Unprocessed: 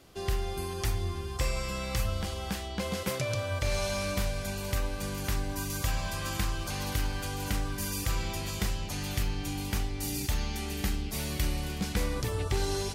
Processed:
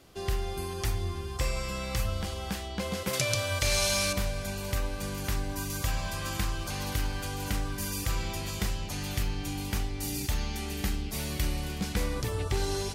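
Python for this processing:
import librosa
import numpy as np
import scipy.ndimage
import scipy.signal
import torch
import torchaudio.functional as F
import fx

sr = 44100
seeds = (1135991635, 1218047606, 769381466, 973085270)

y = fx.high_shelf(x, sr, hz=2200.0, db=11.5, at=(3.13, 4.13))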